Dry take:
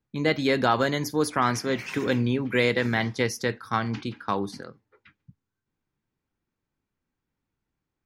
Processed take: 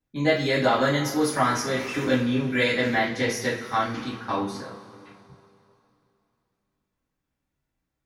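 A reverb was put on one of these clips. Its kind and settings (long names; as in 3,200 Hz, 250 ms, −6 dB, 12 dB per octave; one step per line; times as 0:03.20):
coupled-rooms reverb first 0.38 s, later 2.9 s, from −19 dB, DRR −8.5 dB
level −7 dB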